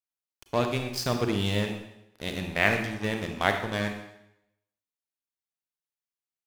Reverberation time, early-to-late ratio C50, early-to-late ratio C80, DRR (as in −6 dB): 0.80 s, 6.5 dB, 9.0 dB, 5.0 dB